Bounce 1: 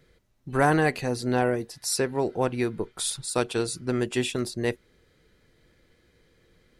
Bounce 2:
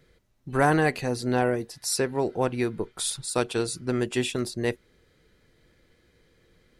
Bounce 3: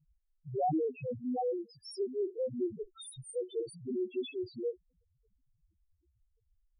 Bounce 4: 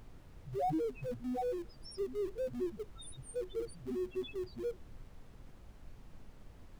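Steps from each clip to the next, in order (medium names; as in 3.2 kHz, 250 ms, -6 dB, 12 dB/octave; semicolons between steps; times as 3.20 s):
no audible change
loudest bins only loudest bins 1
in parallel at -11 dB: Schmitt trigger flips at -38 dBFS; on the sum: added noise brown -47 dBFS; trim -4 dB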